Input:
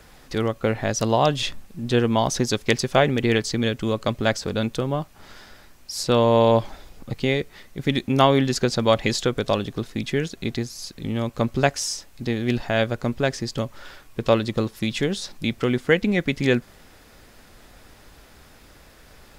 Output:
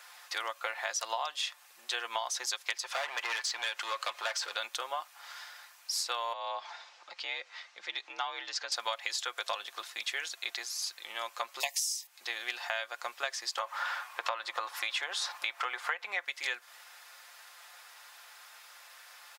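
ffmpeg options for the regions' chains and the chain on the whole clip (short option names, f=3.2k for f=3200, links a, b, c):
-filter_complex "[0:a]asettb=1/sr,asplit=3[a][b][c];[a]atrim=end=2.834[d];[b]atrim=start=2.83:end=4.57,asetpts=PTS-STARTPTS,afade=t=in:d=0.004:c=qsin,afade=t=out:st=1.736:d=0.004:c=qsin,acompressor=mode=upward:threshold=-23dB:ratio=2.5:attack=3.2:release=140:knee=2.83:detection=peak,volume=20dB,asoftclip=hard,volume=-20dB,asplit=2[e][f];[f]highpass=f=720:p=1,volume=11dB,asoftclip=type=tanh:threshold=-12.5dB[g];[e][g]amix=inputs=2:normalize=0,lowpass=f=3.3k:p=1,volume=-6dB[h];[c]atrim=start=4.566[i];[d][h]acrossfade=d=0.004:c1=hsin:c2=qsin[j];[j][i]acrossfade=d=0.004:c1=qsin:c2=hsin,asettb=1/sr,asplit=3[k][l][m];[k]atrim=end=6.334[n];[l]atrim=start=6.33:end=8.72,asetpts=PTS-STARTPTS,afade=t=in:d=0.004:c=qsin,afade=t=out:st=2.386:d=0.004:c=qsin,lowpass=f=6k:w=0.5412,lowpass=f=6k:w=1.3066,acompressor=threshold=-31dB:ratio=2:attack=3.2:release=140:knee=1:detection=peak,afreqshift=61[o];[m]atrim=start=8.716[p];[n][o]acrossfade=d=0.004:c1=hsin:c2=qsin[q];[q][p]acrossfade=d=0.004:c1=qsin:c2=hsin,asettb=1/sr,asplit=3[r][s][t];[r]atrim=end=11.604[u];[s]atrim=start=11.6:end=12.07,asetpts=PTS-STARTPTS,afade=t=in:d=0.004:c=qsin,afade=t=out:st=0.466:d=0.004:c=qsin,asuperstop=centerf=1400:order=12:qfactor=2,aemphasis=mode=production:type=riaa[v];[t]atrim=start=12.066[w];[u][v]acrossfade=d=0.004:c1=hsin:c2=qsin[x];[x][w]acrossfade=d=0.004:c1=qsin:c2=hsin,asettb=1/sr,asplit=3[y][z][aa];[y]atrim=end=13.574[ab];[z]atrim=start=13.57:end=16.25,asetpts=PTS-STARTPTS,afade=t=in:d=0.004:c=qsin,afade=t=out:st=2.676:d=0.004:c=qsin,equalizer=f=950:w=0.44:g=15,acompressor=threshold=-25dB:ratio=1.5:attack=3.2:release=140:knee=1:detection=peak[ac];[aa]atrim=start=16.246[ad];[ab][ac]acrossfade=d=0.004:c1=hsin:c2=qsin[ae];[ae][ad]acrossfade=d=0.004:c1=qsin:c2=hsin,highpass=f=840:w=0.5412,highpass=f=840:w=1.3066,aecho=1:1:5.7:0.43,acompressor=threshold=-30dB:ratio=12"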